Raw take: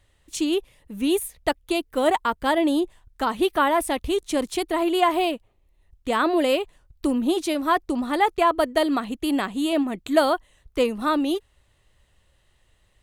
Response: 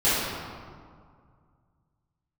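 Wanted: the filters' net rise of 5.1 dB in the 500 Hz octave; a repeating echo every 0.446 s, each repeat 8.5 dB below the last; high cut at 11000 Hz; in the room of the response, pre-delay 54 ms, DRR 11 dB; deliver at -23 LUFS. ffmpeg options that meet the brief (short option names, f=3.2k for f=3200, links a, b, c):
-filter_complex "[0:a]lowpass=11k,equalizer=f=500:t=o:g=7,aecho=1:1:446|892|1338|1784:0.376|0.143|0.0543|0.0206,asplit=2[a][b];[1:a]atrim=start_sample=2205,adelay=54[c];[b][c]afir=irnorm=-1:irlink=0,volume=-28dB[d];[a][d]amix=inputs=2:normalize=0,volume=-3.5dB"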